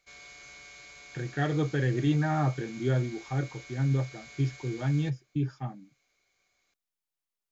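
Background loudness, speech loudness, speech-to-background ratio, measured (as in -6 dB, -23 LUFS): -47.5 LUFS, -30.5 LUFS, 17.0 dB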